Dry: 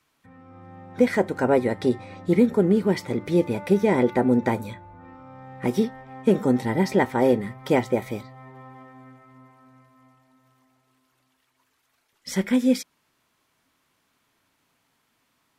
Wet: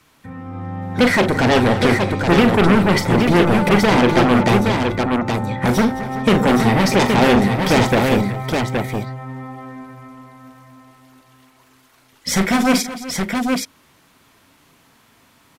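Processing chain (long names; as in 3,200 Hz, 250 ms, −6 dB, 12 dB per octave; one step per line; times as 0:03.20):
0:03.69–0:05.35: low-pass that shuts in the quiet parts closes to 2,400 Hz, open at −17.5 dBFS
low-shelf EQ 400 Hz +4 dB
in parallel at −11 dB: sine wavefolder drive 18 dB, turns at −4.5 dBFS
on the sum: multi-tap delay 41/217/376/821 ms −9.5/−15.5/−16.5/−4.5 dB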